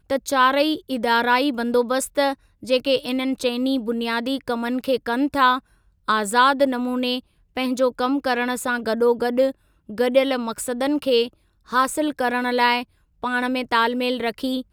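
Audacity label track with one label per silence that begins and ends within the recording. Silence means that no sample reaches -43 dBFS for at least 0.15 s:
2.340000	2.630000	silence
5.590000	6.080000	silence
7.200000	7.560000	silence
9.520000	9.890000	silence
11.330000	11.680000	silence
12.840000	13.220000	silence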